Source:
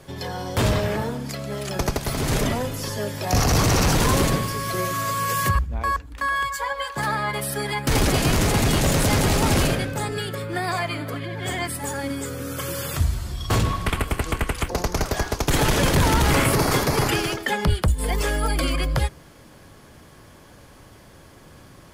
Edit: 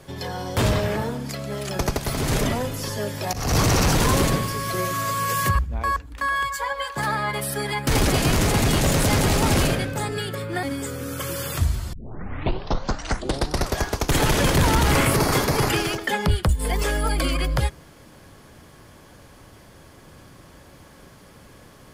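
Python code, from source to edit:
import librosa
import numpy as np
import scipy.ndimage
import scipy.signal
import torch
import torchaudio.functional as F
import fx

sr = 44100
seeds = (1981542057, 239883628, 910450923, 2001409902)

y = fx.edit(x, sr, fx.fade_in_from(start_s=3.33, length_s=0.25, floor_db=-20.5),
    fx.cut(start_s=10.63, length_s=1.39),
    fx.tape_start(start_s=13.32, length_s=1.85), tone=tone)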